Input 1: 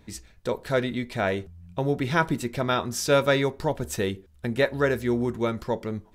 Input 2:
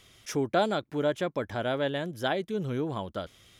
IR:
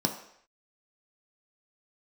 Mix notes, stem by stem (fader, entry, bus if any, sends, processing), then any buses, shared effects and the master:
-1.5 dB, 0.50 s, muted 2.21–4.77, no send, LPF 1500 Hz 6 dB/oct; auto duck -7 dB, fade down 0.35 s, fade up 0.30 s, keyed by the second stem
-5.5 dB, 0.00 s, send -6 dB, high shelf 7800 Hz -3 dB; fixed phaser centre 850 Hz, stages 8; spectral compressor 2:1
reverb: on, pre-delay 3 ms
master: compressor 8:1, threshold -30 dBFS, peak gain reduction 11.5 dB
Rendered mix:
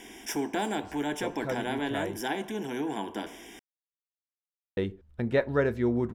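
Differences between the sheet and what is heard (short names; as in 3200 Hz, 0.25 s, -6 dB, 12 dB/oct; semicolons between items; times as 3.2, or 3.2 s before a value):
stem 1: entry 0.50 s -> 0.75 s; master: missing compressor 8:1, threshold -30 dBFS, peak gain reduction 11.5 dB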